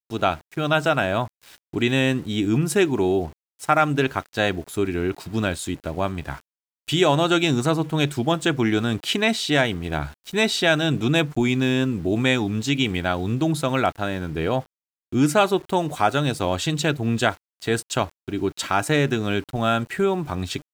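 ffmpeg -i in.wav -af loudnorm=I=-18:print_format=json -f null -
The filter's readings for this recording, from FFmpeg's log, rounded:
"input_i" : "-22.7",
"input_tp" : "-4.1",
"input_lra" : "2.5",
"input_thresh" : "-32.9",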